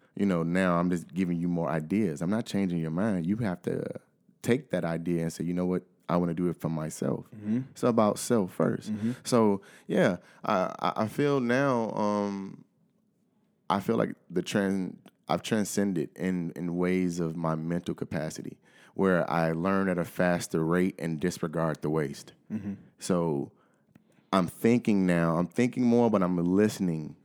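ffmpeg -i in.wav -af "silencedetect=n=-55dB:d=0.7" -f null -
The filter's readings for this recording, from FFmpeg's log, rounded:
silence_start: 12.63
silence_end: 13.70 | silence_duration: 1.07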